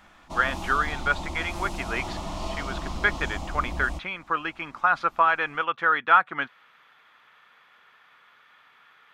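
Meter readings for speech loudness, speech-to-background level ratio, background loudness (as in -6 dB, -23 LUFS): -25.5 LUFS, 10.0 dB, -35.5 LUFS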